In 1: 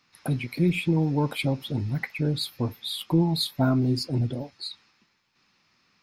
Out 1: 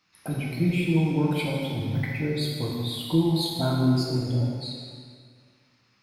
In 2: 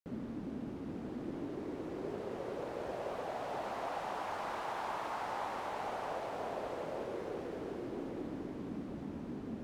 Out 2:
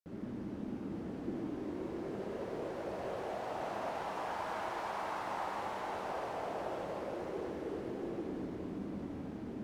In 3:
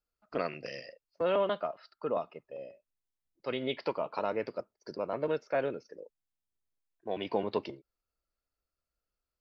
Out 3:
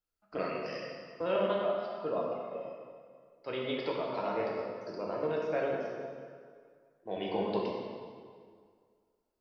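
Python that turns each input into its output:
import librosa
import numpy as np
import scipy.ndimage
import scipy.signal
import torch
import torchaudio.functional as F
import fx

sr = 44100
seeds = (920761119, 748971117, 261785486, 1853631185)

y = fx.rev_plate(x, sr, seeds[0], rt60_s=2.0, hf_ratio=0.8, predelay_ms=0, drr_db=-3.0)
y = y * 10.0 ** (-4.5 / 20.0)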